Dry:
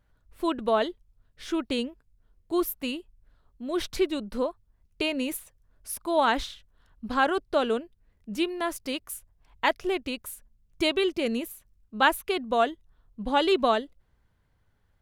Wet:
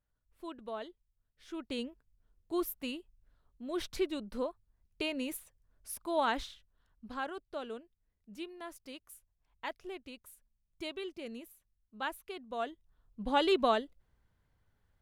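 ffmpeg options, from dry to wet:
ffmpeg -i in.wav -af "volume=3.5dB,afade=type=in:start_time=1.45:duration=0.43:silence=0.334965,afade=type=out:start_time=6.23:duration=1.1:silence=0.375837,afade=type=in:start_time=12.49:duration=0.8:silence=0.281838" out.wav

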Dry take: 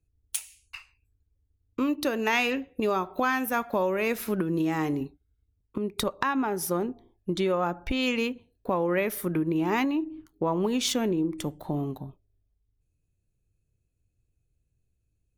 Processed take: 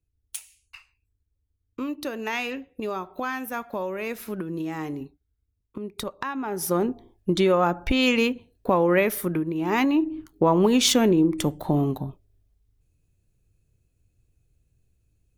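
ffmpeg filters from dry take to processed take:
ffmpeg -i in.wav -af "volume=16dB,afade=type=in:start_time=6.41:duration=0.46:silence=0.316228,afade=type=out:start_time=8.99:duration=0.56:silence=0.375837,afade=type=in:start_time=9.55:duration=0.51:silence=0.316228" out.wav

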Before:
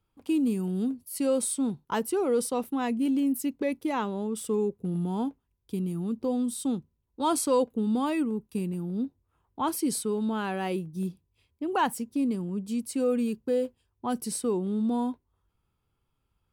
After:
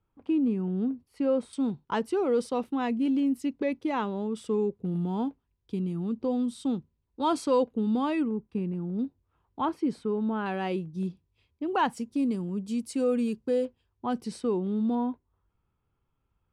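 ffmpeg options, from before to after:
ffmpeg -i in.wav -af "asetnsamples=nb_out_samples=441:pad=0,asendcmd='1.53 lowpass f 4500;8.28 lowpass f 2100;8.99 lowpass f 4500;9.65 lowpass f 2000;10.46 lowpass f 4900;11.97 lowpass f 8100;13.65 lowpass f 4000;14.95 lowpass f 2400',lowpass=2000" out.wav

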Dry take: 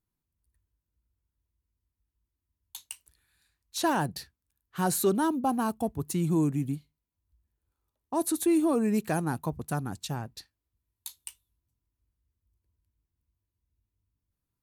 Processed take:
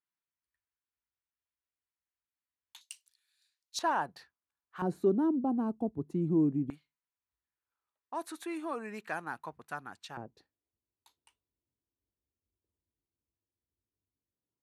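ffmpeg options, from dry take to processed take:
ffmpeg -i in.wav -af "asetnsamples=nb_out_samples=441:pad=0,asendcmd='2.81 bandpass f 4800;3.79 bandpass f 1100;4.82 bandpass f 300;6.7 bandpass f 1600;10.17 bandpass f 440',bandpass=frequency=1800:width_type=q:width=1.2:csg=0" out.wav

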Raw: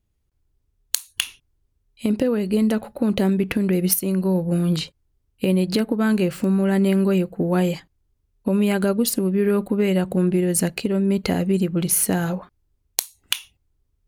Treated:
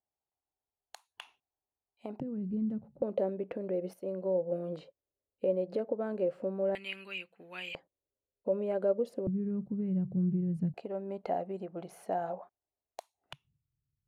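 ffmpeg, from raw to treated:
ffmpeg -i in.wav -af "asetnsamples=nb_out_samples=441:pad=0,asendcmd='2.2 bandpass f 140;3.02 bandpass f 560;6.75 bandpass f 2600;7.75 bandpass f 550;9.27 bandpass f 140;10.74 bandpass f 690;13.33 bandpass f 140',bandpass=frequency=770:width_type=q:width=4.8:csg=0" out.wav

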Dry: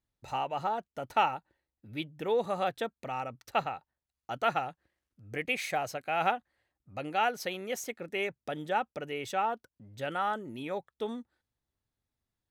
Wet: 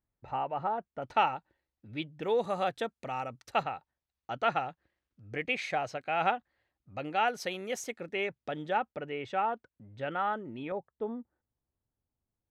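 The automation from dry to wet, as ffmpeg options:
ffmpeg -i in.wav -af "asetnsamples=nb_out_samples=441:pad=0,asendcmd='1.02 lowpass f 4800;2.23 lowpass f 10000;3.63 lowpass f 4700;7.28 lowpass f 9700;8.07 lowpass f 4500;8.77 lowpass f 2700;10.72 lowpass f 1000',lowpass=1800" out.wav

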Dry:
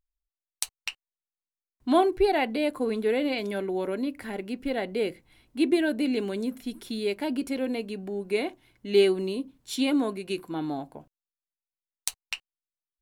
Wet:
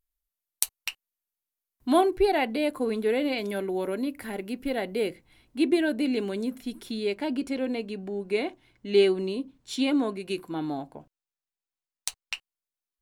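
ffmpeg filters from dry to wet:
ffmpeg -i in.wav -af "asetnsamples=nb_out_samples=441:pad=0,asendcmd='2.01 equalizer g 3.5;3.49 equalizer g 9.5;5.08 equalizer g -1.5;6.91 equalizer g -11.5;10.2 equalizer g -1;10.82 equalizer g -7;12.34 equalizer g 3',equalizer=frequency=13000:width_type=o:width=0.62:gain=12.5" out.wav

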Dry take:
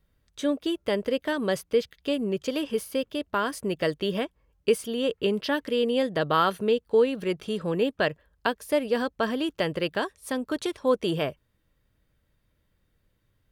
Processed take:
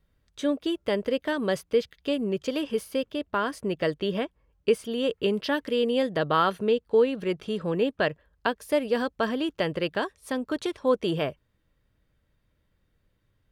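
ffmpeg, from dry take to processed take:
ffmpeg -i in.wav -af "asetnsamples=nb_out_samples=441:pad=0,asendcmd='3.12 lowpass f 4000;4.91 lowpass f 10000;6.17 lowpass f 4800;8.6 lowpass f 9900;9.29 lowpass f 5600',lowpass=frequency=7100:poles=1" out.wav

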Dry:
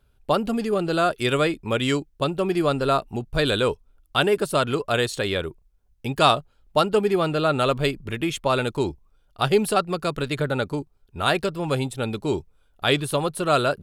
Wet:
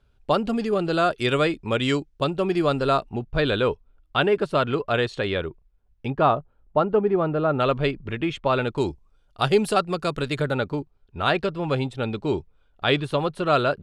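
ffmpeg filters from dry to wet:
ffmpeg -i in.wav -af "asetnsamples=nb_out_samples=441:pad=0,asendcmd='3.09 lowpass f 3200;6.1 lowpass f 1300;7.6 lowpass f 3100;8.77 lowpass f 8300;10.54 lowpass f 3900',lowpass=6400" out.wav

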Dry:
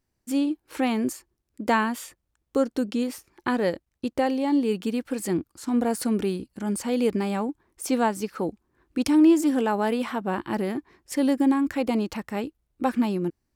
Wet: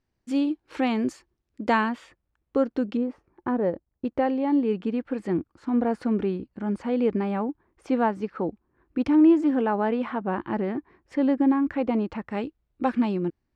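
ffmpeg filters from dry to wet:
ffmpeg -i in.wav -af "asetnsamples=nb_out_samples=441:pad=0,asendcmd='1.89 lowpass f 2600;2.97 lowpass f 1000;4.05 lowpass f 2000;12.31 lowpass f 3500',lowpass=4400" out.wav

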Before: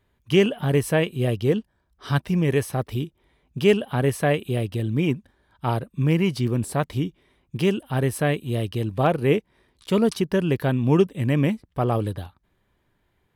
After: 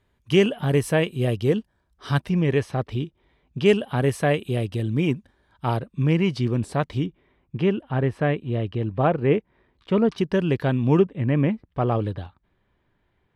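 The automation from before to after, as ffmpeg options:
ffmpeg -i in.wav -af "asetnsamples=nb_out_samples=441:pad=0,asendcmd='2.29 lowpass f 4700;3.66 lowpass f 9500;5.77 lowpass f 5800;7.06 lowpass f 2300;10.18 lowpass f 5700;10.99 lowpass f 2200;11.65 lowpass f 3700',lowpass=11000" out.wav

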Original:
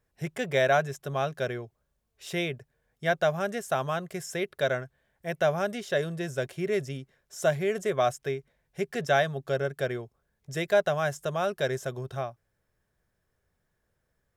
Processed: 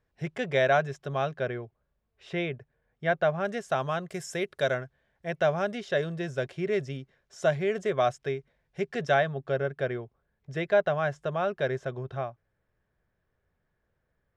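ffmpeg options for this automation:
ffmpeg -i in.wav -af "asetnsamples=nb_out_samples=441:pad=0,asendcmd='1.34 lowpass f 2700;3.45 lowpass f 5300;4.1 lowpass f 9200;4.74 lowpass f 4800;9.14 lowpass f 2900',lowpass=4500" out.wav

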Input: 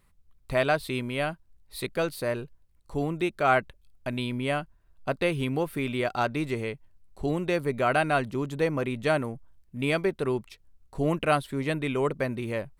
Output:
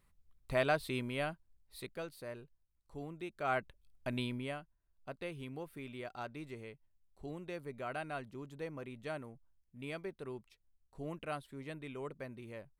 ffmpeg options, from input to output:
ffmpeg -i in.wav -af "volume=3.5dB,afade=type=out:start_time=1.03:duration=1.04:silence=0.334965,afade=type=in:start_time=3.25:duration=0.93:silence=0.298538,afade=type=out:start_time=4.18:duration=0.41:silence=0.281838" out.wav

